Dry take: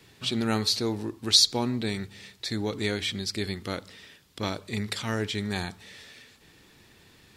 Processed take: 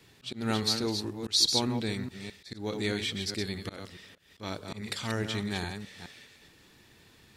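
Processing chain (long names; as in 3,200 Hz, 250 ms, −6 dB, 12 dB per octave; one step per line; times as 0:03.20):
delay that plays each chunk backwards 209 ms, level −7 dB
volume swells 156 ms
level −3 dB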